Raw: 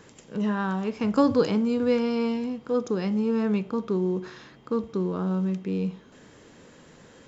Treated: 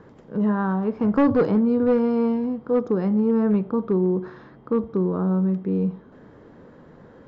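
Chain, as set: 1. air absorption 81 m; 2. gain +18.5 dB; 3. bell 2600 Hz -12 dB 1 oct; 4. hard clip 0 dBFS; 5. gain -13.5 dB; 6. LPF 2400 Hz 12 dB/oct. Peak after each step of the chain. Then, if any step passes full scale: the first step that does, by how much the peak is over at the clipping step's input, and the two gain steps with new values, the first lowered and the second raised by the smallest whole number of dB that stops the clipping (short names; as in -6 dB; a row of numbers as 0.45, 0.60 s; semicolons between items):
-10.0, +8.5, +8.0, 0.0, -13.5, -13.0 dBFS; step 2, 8.0 dB; step 2 +10.5 dB, step 5 -5.5 dB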